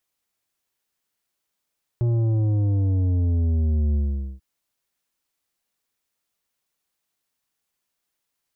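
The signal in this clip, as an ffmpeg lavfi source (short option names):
-f lavfi -i "aevalsrc='0.112*clip((2.39-t)/0.45,0,1)*tanh(2.82*sin(2*PI*120*2.39/log(65/120)*(exp(log(65/120)*t/2.39)-1)))/tanh(2.82)':d=2.39:s=44100"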